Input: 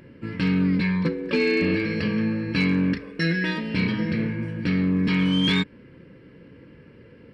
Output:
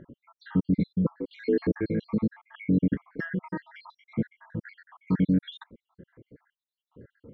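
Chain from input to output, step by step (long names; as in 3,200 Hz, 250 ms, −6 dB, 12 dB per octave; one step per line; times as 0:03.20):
time-frequency cells dropped at random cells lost 76%
moving average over 17 samples
level +1 dB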